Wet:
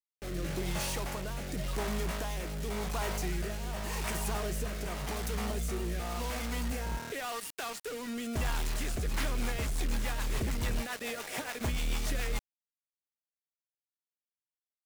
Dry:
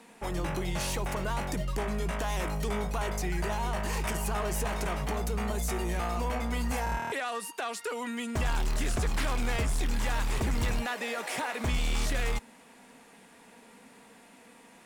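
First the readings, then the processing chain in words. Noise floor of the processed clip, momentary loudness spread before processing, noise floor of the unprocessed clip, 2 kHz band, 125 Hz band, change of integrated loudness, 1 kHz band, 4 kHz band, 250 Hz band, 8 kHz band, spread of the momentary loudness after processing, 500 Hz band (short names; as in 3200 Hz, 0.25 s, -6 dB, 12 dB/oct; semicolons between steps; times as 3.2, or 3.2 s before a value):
under -85 dBFS, 3 LU, -55 dBFS, -4.0 dB, -3.5 dB, -3.5 dB, -6.0 dB, -1.5 dB, -3.0 dB, -1.5 dB, 4 LU, -4.0 dB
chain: requantised 6-bit, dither none; rotary speaker horn 0.9 Hz, later 7 Hz, at 8.82; gain -2 dB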